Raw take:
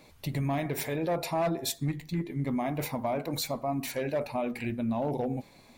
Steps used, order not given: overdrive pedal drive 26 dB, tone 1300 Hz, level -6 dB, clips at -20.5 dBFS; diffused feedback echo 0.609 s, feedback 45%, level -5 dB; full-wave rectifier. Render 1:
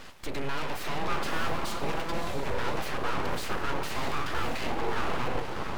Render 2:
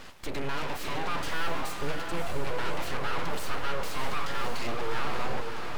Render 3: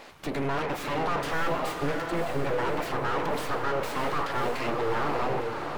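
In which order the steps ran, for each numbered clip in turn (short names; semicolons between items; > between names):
overdrive pedal > diffused feedback echo > full-wave rectifier; overdrive pedal > full-wave rectifier > diffused feedback echo; full-wave rectifier > overdrive pedal > diffused feedback echo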